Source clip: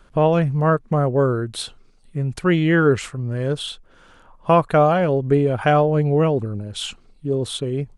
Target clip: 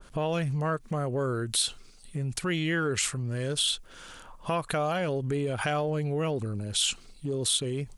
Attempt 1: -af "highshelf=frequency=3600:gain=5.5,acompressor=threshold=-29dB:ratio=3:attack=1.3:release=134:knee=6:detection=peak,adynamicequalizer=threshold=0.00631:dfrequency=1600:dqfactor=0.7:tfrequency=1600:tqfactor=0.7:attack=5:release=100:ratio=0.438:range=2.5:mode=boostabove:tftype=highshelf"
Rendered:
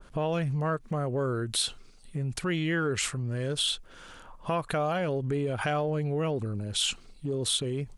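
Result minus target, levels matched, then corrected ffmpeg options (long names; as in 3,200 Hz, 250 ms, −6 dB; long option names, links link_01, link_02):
8,000 Hz band −2.5 dB
-af "highshelf=frequency=3600:gain=13,acompressor=threshold=-29dB:ratio=3:attack=1.3:release=134:knee=6:detection=peak,adynamicequalizer=threshold=0.00631:dfrequency=1600:dqfactor=0.7:tfrequency=1600:tqfactor=0.7:attack=5:release=100:ratio=0.438:range=2.5:mode=boostabove:tftype=highshelf"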